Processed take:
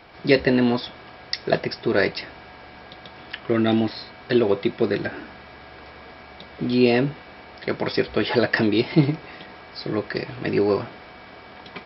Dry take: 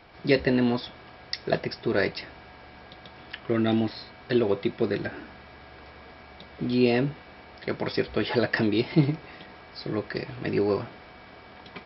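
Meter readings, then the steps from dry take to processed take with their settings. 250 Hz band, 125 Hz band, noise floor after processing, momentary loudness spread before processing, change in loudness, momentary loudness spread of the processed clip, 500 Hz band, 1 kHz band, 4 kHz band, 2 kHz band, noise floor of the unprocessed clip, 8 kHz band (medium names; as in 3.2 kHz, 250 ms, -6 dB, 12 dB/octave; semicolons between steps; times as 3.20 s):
+4.0 dB, +2.5 dB, -44 dBFS, 22 LU, +4.0 dB, 23 LU, +4.5 dB, +5.0 dB, +5.0 dB, +5.0 dB, -49 dBFS, no reading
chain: bass shelf 130 Hz -5 dB; trim +5 dB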